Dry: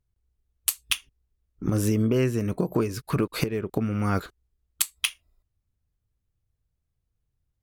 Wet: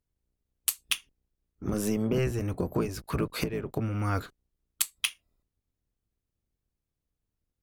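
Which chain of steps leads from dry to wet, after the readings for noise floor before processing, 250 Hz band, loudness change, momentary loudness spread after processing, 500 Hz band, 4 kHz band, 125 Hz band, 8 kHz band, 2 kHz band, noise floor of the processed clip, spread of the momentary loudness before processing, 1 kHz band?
−80 dBFS, −5.0 dB, −4.0 dB, 5 LU, −4.0 dB, −3.0 dB, −4.5 dB, −3.0 dB, −3.0 dB, below −85 dBFS, 6 LU, −3.0 dB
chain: sub-octave generator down 1 octave, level +1 dB
low-shelf EQ 200 Hz −8 dB
level −3 dB

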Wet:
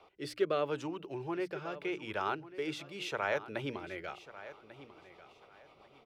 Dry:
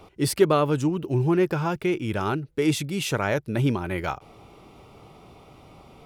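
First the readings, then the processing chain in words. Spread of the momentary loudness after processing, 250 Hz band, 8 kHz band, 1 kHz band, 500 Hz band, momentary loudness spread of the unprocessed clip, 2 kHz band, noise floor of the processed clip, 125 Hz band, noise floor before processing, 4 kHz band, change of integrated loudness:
20 LU, −16.0 dB, −20.0 dB, −9.5 dB, −11.0 dB, 7 LU, −7.5 dB, −62 dBFS, −22.0 dB, −53 dBFS, −10.5 dB, −12.5 dB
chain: three-way crossover with the lows and the highs turned down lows −16 dB, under 420 Hz, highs −22 dB, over 4,800 Hz
mains-hum notches 60/120/180/240/300 Hz
rotating-speaker cabinet horn 0.8 Hz, later 7.5 Hz, at 0:04.28
high-shelf EQ 9,200 Hz +10 dB
repeating echo 1,144 ms, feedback 24%, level −15.5 dB
level −5 dB

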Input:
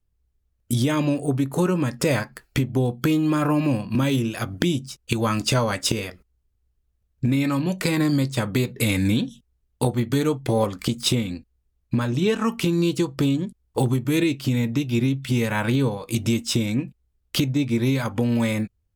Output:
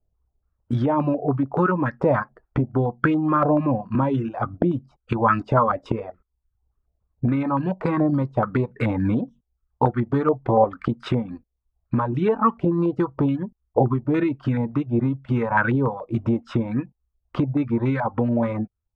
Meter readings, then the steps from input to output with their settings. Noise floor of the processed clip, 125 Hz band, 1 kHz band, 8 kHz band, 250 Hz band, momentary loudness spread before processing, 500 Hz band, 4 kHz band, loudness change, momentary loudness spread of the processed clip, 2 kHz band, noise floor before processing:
−78 dBFS, −1.0 dB, +7.5 dB, below −30 dB, −0.5 dB, 6 LU, +2.5 dB, −18.0 dB, +0.5 dB, 8 LU, −0.5 dB, −71 dBFS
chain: reverb reduction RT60 0.53 s
low-pass on a step sequencer 7 Hz 670–1,500 Hz

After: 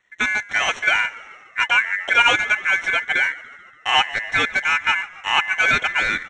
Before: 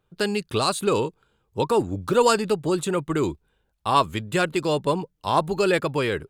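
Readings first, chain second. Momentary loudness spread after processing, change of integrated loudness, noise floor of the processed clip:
7 LU, +5.0 dB, −48 dBFS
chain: variable-slope delta modulation 32 kbit/s
low-shelf EQ 140 Hz +4 dB
ring modulation 1,900 Hz
Butterworth band-reject 4,800 Hz, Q 3.5
echo with shifted repeats 144 ms, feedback 62%, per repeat −60 Hz, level −20 dB
level +6 dB

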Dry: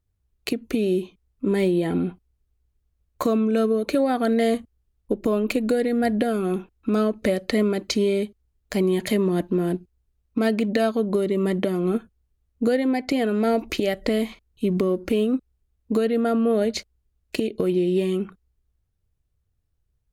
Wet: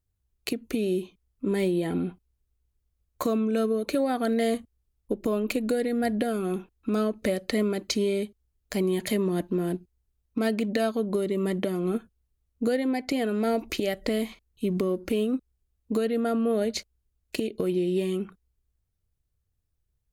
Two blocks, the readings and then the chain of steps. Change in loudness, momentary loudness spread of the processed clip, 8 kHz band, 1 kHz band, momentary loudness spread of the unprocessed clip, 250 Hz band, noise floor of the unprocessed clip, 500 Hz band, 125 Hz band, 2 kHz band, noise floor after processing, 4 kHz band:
−4.5 dB, 8 LU, −0.5 dB, −4.5 dB, 8 LU, −4.5 dB, −73 dBFS, −4.5 dB, −4.5 dB, −4.0 dB, −77 dBFS, −3.0 dB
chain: high-shelf EQ 5,400 Hz +5.5 dB
level −4.5 dB

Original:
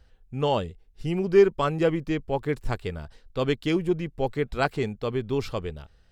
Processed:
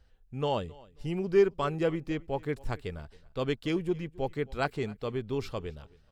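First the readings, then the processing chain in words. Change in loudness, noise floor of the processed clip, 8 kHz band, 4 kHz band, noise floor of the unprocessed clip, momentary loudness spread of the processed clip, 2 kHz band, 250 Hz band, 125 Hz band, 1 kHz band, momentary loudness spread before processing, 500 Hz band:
−5.5 dB, −61 dBFS, can't be measured, −5.5 dB, −59 dBFS, 14 LU, −5.5 dB, −5.5 dB, −5.5 dB, −5.5 dB, 14 LU, −5.5 dB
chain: repeating echo 269 ms, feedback 23%, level −23 dB
level −5.5 dB

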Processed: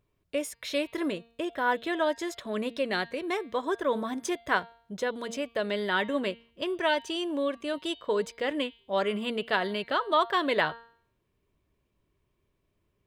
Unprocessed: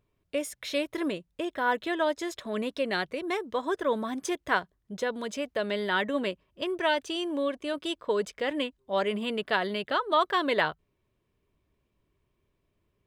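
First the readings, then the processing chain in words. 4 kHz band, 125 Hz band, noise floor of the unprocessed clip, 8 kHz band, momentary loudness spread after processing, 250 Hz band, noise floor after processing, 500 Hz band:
0.0 dB, can't be measured, −76 dBFS, 0.0 dB, 7 LU, 0.0 dB, −76 dBFS, 0.0 dB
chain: hum removal 231.4 Hz, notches 21

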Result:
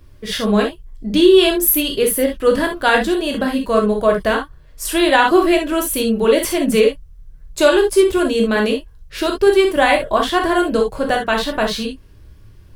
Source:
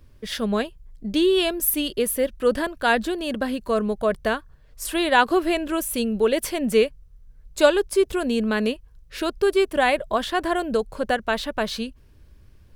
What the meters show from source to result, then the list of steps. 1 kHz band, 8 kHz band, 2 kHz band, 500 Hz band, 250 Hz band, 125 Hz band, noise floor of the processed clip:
+6.0 dB, +7.0 dB, +6.0 dB, +7.0 dB, +7.5 dB, can't be measured, −43 dBFS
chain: reverb whose tail is shaped and stops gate 90 ms flat, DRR 1 dB
boost into a limiter +5.5 dB
level −1 dB

